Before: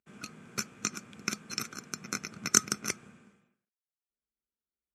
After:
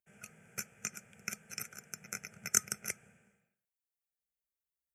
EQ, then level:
high-shelf EQ 7,000 Hz +9 dB
phaser with its sweep stopped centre 1,100 Hz, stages 6
−4.5 dB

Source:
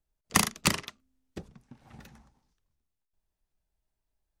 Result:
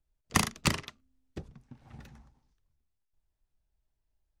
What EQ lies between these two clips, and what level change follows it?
bass and treble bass +6 dB, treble 0 dB
parametric band 190 Hz −7 dB 0.31 octaves
high-shelf EQ 8,500 Hz −7 dB
−2.0 dB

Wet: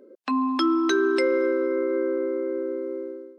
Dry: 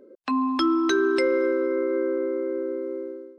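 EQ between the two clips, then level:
linear-phase brick-wall high-pass 180 Hz
0.0 dB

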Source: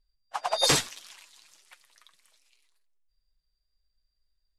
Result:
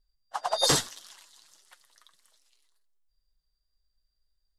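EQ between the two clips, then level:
parametric band 2,400 Hz −11 dB 0.39 octaves
0.0 dB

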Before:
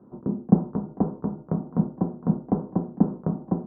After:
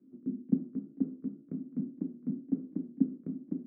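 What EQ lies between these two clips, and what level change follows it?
formant filter i
0.0 dB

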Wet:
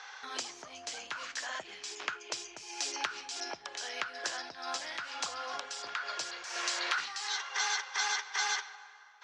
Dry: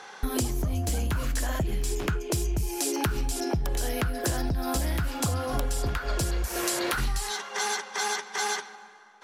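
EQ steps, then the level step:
high-pass filter 1,100 Hz 12 dB per octave
low-pass with resonance 6,300 Hz, resonance Q 1.8
high-frequency loss of the air 120 metres
0.0 dB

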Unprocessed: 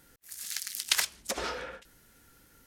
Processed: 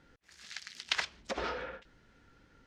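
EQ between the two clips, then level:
high-frequency loss of the air 160 metres
high-shelf EQ 11,000 Hz −11.5 dB
0.0 dB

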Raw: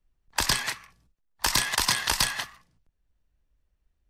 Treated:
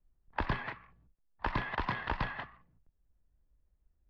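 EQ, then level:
high-frequency loss of the air 420 metres
head-to-tape spacing loss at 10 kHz 29 dB
0.0 dB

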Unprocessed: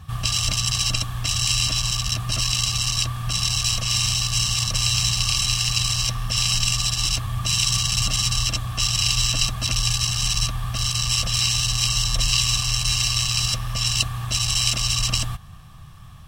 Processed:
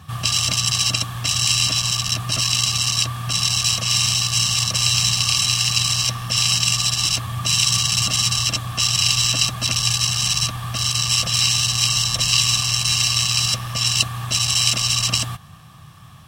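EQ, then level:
high-pass filter 120 Hz 12 dB per octave
+3.5 dB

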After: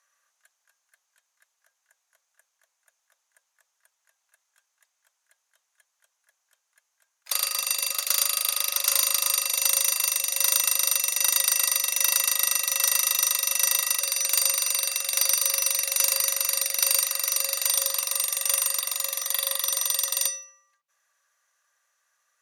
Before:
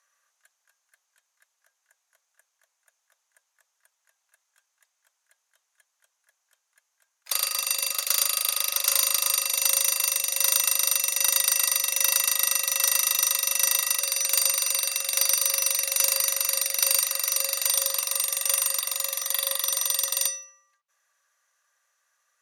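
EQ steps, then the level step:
mains-hum notches 60/120/180/240/300/360/420/480/540 Hz
0.0 dB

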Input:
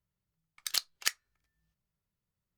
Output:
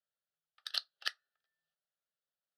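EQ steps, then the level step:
band-pass filter 500–5,800 Hz
phaser with its sweep stopped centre 1,500 Hz, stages 8
−1.0 dB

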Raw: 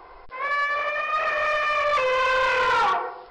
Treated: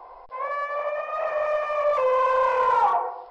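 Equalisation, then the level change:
dynamic equaliser 3,900 Hz, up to −7 dB, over −42 dBFS, Q 1.1
flat-topped bell 730 Hz +12.5 dB 1.3 octaves
−8.5 dB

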